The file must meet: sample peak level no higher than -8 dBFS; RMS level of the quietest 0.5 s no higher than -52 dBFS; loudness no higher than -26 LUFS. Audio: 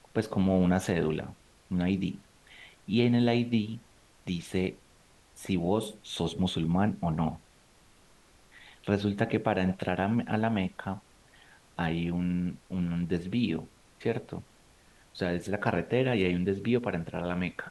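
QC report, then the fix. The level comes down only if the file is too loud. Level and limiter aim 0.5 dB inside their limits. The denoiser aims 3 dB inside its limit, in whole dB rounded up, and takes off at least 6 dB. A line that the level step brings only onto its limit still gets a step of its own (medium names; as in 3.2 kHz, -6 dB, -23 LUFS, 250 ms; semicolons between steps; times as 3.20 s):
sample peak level -10.0 dBFS: pass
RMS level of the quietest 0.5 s -60 dBFS: pass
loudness -30.0 LUFS: pass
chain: none needed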